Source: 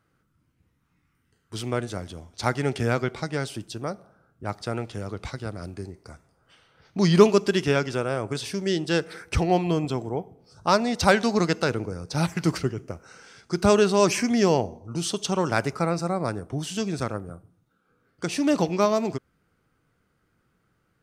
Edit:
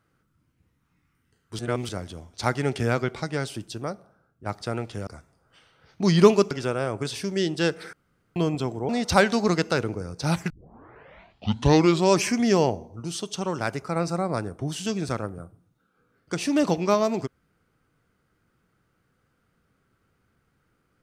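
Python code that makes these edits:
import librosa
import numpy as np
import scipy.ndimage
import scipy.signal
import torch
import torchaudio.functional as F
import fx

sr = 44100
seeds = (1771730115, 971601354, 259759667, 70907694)

y = fx.edit(x, sr, fx.reverse_span(start_s=1.59, length_s=0.3),
    fx.fade_out_to(start_s=3.8, length_s=0.66, floor_db=-7.0),
    fx.cut(start_s=5.07, length_s=0.96),
    fx.cut(start_s=7.47, length_s=0.34),
    fx.room_tone_fill(start_s=9.23, length_s=0.43),
    fx.cut(start_s=10.19, length_s=0.61),
    fx.tape_start(start_s=12.41, length_s=1.67),
    fx.clip_gain(start_s=14.91, length_s=0.96, db=-4.0), tone=tone)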